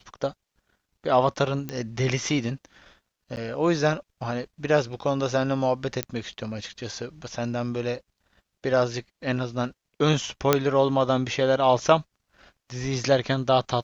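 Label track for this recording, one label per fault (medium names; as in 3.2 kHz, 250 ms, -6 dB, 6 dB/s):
1.690000	1.690000	pop -17 dBFS
3.360000	3.370000	dropout 9.7 ms
6.030000	6.030000	pop -10 dBFS
10.530000	10.530000	pop -3 dBFS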